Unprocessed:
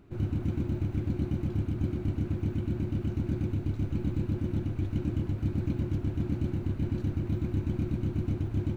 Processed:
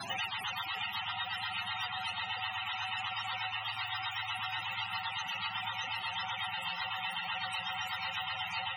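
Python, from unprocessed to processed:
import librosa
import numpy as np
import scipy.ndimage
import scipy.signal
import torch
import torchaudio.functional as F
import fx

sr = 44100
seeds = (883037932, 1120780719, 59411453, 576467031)

p1 = fx.octave_mirror(x, sr, pivot_hz=520.0)
p2 = fx.low_shelf(p1, sr, hz=340.0, db=-4.0)
p3 = p2 + fx.echo_diffused(p2, sr, ms=589, feedback_pct=50, wet_db=-4.5, dry=0)
p4 = fx.spec_topn(p3, sr, count=64)
p5 = fx.band_squash(p4, sr, depth_pct=100)
y = F.gain(torch.from_numpy(p5), -1.5).numpy()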